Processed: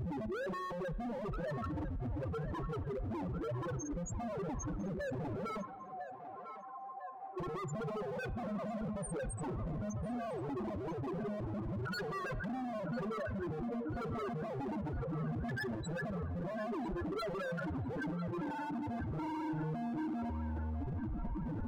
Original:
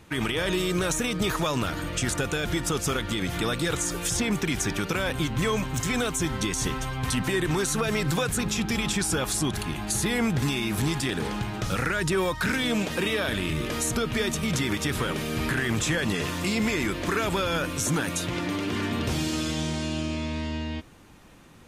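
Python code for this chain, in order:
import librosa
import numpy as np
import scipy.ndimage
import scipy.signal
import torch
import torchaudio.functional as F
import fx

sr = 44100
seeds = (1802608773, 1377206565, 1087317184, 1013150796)

y = np.sign(x) * np.sqrt(np.mean(np.square(x)))
y = fx.formant_cascade(y, sr, vowel='a', at=(5.61, 7.38))
y = fx.spec_topn(y, sr, count=1)
y = 10.0 ** (-39.0 / 20.0) * (np.abs((y / 10.0 ** (-39.0 / 20.0) + 3.0) % 4.0 - 2.0) - 1.0)
y = fx.echo_banded(y, sr, ms=1000, feedback_pct=72, hz=1100.0, wet_db=-8.5)
y = fx.rev_spring(y, sr, rt60_s=1.9, pass_ms=(32, 38, 42), chirp_ms=35, drr_db=17.0)
y = y * librosa.db_to_amplitude(4.5)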